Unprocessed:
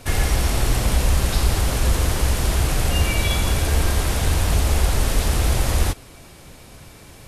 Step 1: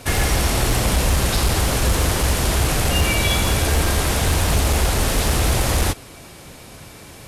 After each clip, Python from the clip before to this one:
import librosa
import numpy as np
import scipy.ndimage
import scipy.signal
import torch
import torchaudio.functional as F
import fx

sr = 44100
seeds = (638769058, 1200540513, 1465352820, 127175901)

y = fx.low_shelf(x, sr, hz=66.0, db=-8.5)
y = fx.clip_asym(y, sr, top_db=-16.5, bottom_db=-14.5)
y = F.gain(torch.from_numpy(y), 4.5).numpy()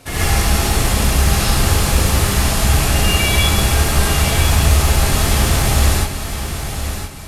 y = fx.echo_feedback(x, sr, ms=1014, feedback_pct=25, wet_db=-8.5)
y = fx.rev_gated(y, sr, seeds[0], gate_ms=160, shape='rising', drr_db=-8.0)
y = F.gain(torch.from_numpy(y), -6.0).numpy()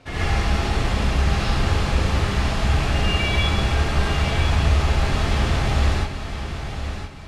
y = scipy.signal.sosfilt(scipy.signal.butter(2, 3800.0, 'lowpass', fs=sr, output='sos'), x)
y = F.gain(torch.from_numpy(y), -5.0).numpy()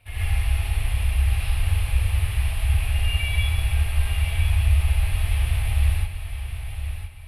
y = fx.curve_eq(x, sr, hz=(100.0, 170.0, 370.0, 760.0, 1400.0, 2500.0, 6700.0, 10000.0), db=(0, -24, -22, -13, -16, -2, -21, 11))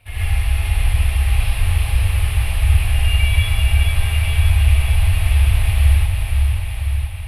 y = fx.echo_diffused(x, sr, ms=500, feedback_pct=46, wet_db=-4.5)
y = F.gain(torch.from_numpy(y), 4.5).numpy()